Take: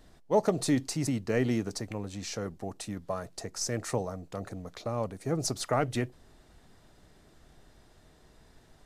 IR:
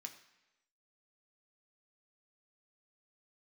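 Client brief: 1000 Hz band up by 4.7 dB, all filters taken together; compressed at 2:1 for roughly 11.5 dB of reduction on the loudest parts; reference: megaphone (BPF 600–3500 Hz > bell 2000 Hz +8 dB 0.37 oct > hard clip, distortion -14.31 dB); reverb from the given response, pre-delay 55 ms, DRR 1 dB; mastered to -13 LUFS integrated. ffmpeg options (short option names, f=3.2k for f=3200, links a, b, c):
-filter_complex "[0:a]equalizer=f=1k:t=o:g=7,acompressor=threshold=-39dB:ratio=2,asplit=2[a][b];[1:a]atrim=start_sample=2205,adelay=55[c];[b][c]afir=irnorm=-1:irlink=0,volume=3.5dB[d];[a][d]amix=inputs=2:normalize=0,highpass=600,lowpass=3.5k,equalizer=f=2k:t=o:w=0.37:g=8,asoftclip=type=hard:threshold=-32dB,volume=28.5dB"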